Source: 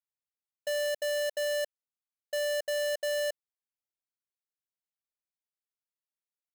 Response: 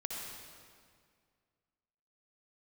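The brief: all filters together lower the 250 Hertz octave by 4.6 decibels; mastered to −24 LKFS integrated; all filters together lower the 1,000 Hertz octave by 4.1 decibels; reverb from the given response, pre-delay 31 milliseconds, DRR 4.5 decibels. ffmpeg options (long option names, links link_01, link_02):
-filter_complex "[0:a]equalizer=frequency=250:width_type=o:gain=-6,equalizer=frequency=1000:width_type=o:gain=-6,asplit=2[link_01][link_02];[1:a]atrim=start_sample=2205,adelay=31[link_03];[link_02][link_03]afir=irnorm=-1:irlink=0,volume=-5.5dB[link_04];[link_01][link_04]amix=inputs=2:normalize=0,volume=8.5dB"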